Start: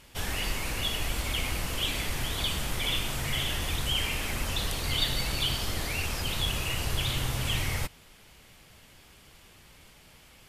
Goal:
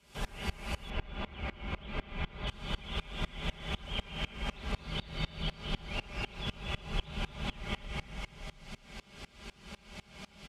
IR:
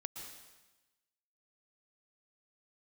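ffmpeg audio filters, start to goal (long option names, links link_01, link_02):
-filter_complex "[0:a]afreqshift=25,bandreject=frequency=1800:width=13,aecho=1:1:5:0.65[link_01];[1:a]atrim=start_sample=2205,asetrate=27783,aresample=44100[link_02];[link_01][link_02]afir=irnorm=-1:irlink=0,acompressor=threshold=-49dB:ratio=2,flanger=delay=4.6:depth=5.7:regen=-87:speed=1.6:shape=triangular,acrossover=split=2800[link_03][link_04];[link_04]acompressor=threshold=-59dB:ratio=4:attack=1:release=60[link_05];[link_03][link_05]amix=inputs=2:normalize=0,asetnsamples=nb_out_samples=441:pad=0,asendcmd='0.9 lowpass f 2800;2.47 lowpass f 6100',lowpass=10000,aeval=exprs='val(0)*pow(10,-25*if(lt(mod(-4*n/s,1),2*abs(-4)/1000),1-mod(-4*n/s,1)/(2*abs(-4)/1000),(mod(-4*n/s,1)-2*abs(-4)/1000)/(1-2*abs(-4)/1000))/20)':channel_layout=same,volume=16.5dB"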